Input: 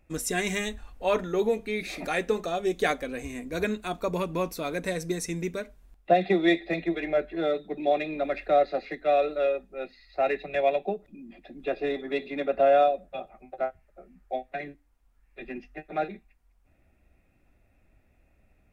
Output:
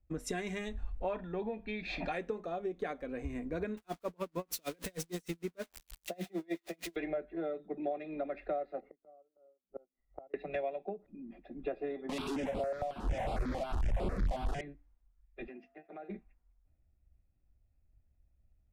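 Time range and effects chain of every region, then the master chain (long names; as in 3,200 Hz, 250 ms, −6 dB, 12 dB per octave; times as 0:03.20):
0:01.13–0:02.12: low-pass with resonance 3,600 Hz, resonance Q 1.5 + comb filter 1.2 ms, depth 46%
0:03.77–0:06.96: spike at every zero crossing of −20 dBFS + tremolo with a sine in dB 6.5 Hz, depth 39 dB
0:08.80–0:10.34: transient designer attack +3 dB, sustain −9 dB + gate with flip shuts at −29 dBFS, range −31 dB + Savitzky-Golay smoothing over 65 samples
0:12.09–0:14.61: linear delta modulator 64 kbit/s, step −21.5 dBFS + leveller curve on the samples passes 1 + step-sequenced phaser 11 Hz 390–6,100 Hz
0:15.46–0:16.08: high-pass filter 220 Hz + downward compressor 5 to 1, threshold −43 dBFS + steady tone 680 Hz −64 dBFS
whole clip: low-pass filter 1,300 Hz 6 dB per octave; downward compressor 10 to 1, threshold −37 dBFS; multiband upward and downward expander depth 70%; level +2.5 dB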